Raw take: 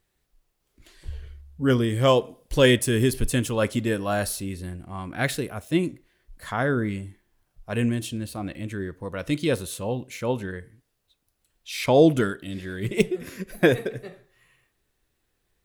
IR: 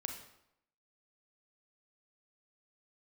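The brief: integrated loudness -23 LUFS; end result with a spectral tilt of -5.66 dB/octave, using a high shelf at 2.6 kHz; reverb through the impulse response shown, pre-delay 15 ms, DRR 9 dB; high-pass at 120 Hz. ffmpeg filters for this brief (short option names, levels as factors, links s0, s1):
-filter_complex "[0:a]highpass=120,highshelf=f=2600:g=-6.5,asplit=2[s0][s1];[1:a]atrim=start_sample=2205,adelay=15[s2];[s1][s2]afir=irnorm=-1:irlink=0,volume=0.376[s3];[s0][s3]amix=inputs=2:normalize=0,volume=1.26"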